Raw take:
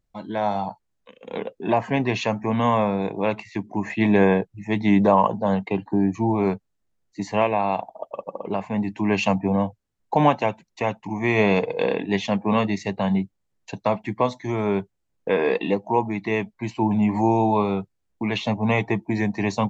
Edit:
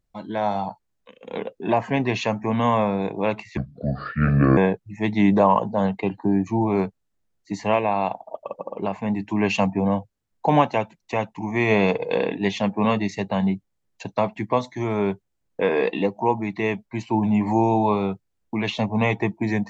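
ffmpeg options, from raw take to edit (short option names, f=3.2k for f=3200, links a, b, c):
-filter_complex "[0:a]asplit=3[a][b][c];[a]atrim=end=3.574[d];[b]atrim=start=3.57:end=4.25,asetpts=PTS-STARTPTS,asetrate=29988,aresample=44100[e];[c]atrim=start=4.246[f];[d][e]acrossfade=d=0.004:c1=hsin:c2=hsin[g];[g][f]acrossfade=d=0.004:c1=hsin:c2=hsin"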